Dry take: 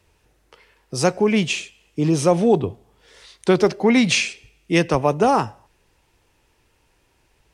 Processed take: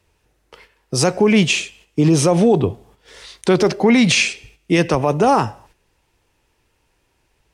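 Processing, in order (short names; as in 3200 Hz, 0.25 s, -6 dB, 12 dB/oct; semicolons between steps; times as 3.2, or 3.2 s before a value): gate -53 dBFS, range -9 dB; limiter -12.5 dBFS, peak gain reduction 8.5 dB; gain +7 dB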